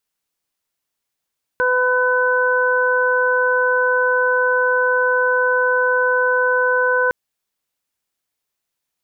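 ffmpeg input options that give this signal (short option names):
-f lavfi -i "aevalsrc='0.126*sin(2*PI*502*t)+0.0891*sin(2*PI*1004*t)+0.141*sin(2*PI*1506*t)':d=5.51:s=44100"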